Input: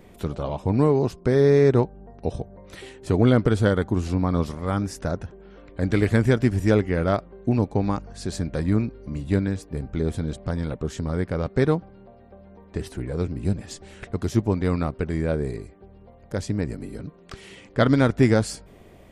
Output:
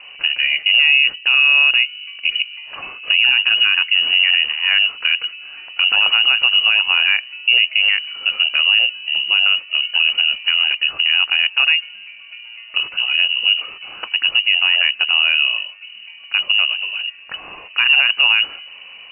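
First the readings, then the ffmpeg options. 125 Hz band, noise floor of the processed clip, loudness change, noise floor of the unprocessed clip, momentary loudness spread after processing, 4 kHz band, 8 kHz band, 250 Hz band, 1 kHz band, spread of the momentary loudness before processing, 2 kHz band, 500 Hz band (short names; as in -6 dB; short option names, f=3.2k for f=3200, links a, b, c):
under -35 dB, -39 dBFS, +10.0 dB, -50 dBFS, 12 LU, +30.5 dB, under -40 dB, under -30 dB, +0.5 dB, 16 LU, +21.0 dB, -21.0 dB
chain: -af "lowpass=f=2.6k:t=q:w=0.5098,lowpass=f=2.6k:t=q:w=0.6013,lowpass=f=2.6k:t=q:w=0.9,lowpass=f=2.6k:t=q:w=2.563,afreqshift=-3000,alimiter=level_in=14dB:limit=-1dB:release=50:level=0:latency=1,volume=-3.5dB"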